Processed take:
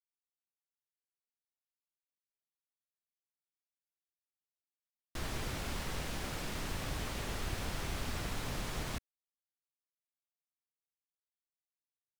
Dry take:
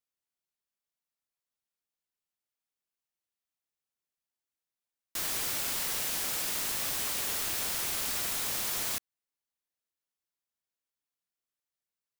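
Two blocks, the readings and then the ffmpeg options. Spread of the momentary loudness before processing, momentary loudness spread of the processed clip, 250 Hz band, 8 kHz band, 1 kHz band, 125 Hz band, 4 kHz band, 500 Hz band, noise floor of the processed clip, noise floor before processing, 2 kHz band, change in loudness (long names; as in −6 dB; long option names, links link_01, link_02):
2 LU, 2 LU, +5.0 dB, −14.5 dB, −2.0 dB, +10.5 dB, −8.5 dB, +0.5 dB, below −85 dBFS, below −85 dBFS, −4.5 dB, −10.0 dB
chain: -af "aemphasis=mode=reproduction:type=riaa,acrusher=bits=7:mix=0:aa=0.5,volume=-2dB"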